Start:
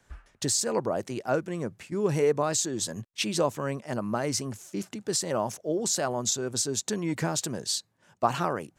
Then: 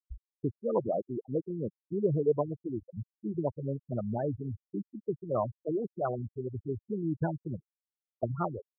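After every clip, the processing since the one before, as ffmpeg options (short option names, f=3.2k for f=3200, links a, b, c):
-af "asubboost=boost=4.5:cutoff=88,afftfilt=real='re*gte(hypot(re,im),0.0891)':imag='im*gte(hypot(re,im),0.0891)':win_size=1024:overlap=0.75,afftfilt=real='re*lt(b*sr/1024,360*pow(1800/360,0.5+0.5*sin(2*PI*4.3*pts/sr)))':imag='im*lt(b*sr/1024,360*pow(1800/360,0.5+0.5*sin(2*PI*4.3*pts/sr)))':win_size=1024:overlap=0.75"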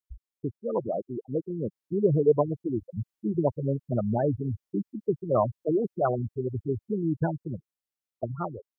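-af "dynaudnorm=f=200:g=17:m=6.5dB"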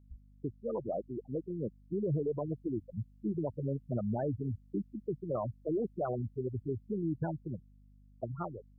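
-af "alimiter=limit=-20.5dB:level=0:latency=1:release=37,aeval=exprs='val(0)+0.00224*(sin(2*PI*50*n/s)+sin(2*PI*2*50*n/s)/2+sin(2*PI*3*50*n/s)/3+sin(2*PI*4*50*n/s)/4+sin(2*PI*5*50*n/s)/5)':c=same,volume=-5.5dB"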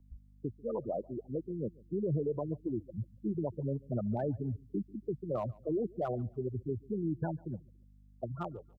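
-filter_complex "[0:a]acrossover=split=110|550[a][b][c];[c]volume=31.5dB,asoftclip=hard,volume=-31.5dB[d];[a][b][d]amix=inputs=3:normalize=0,aecho=1:1:142|284:0.0631|0.0202"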